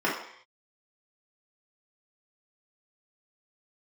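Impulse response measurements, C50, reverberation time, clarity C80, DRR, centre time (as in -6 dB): 4.0 dB, not exponential, 8.0 dB, -7.0 dB, 41 ms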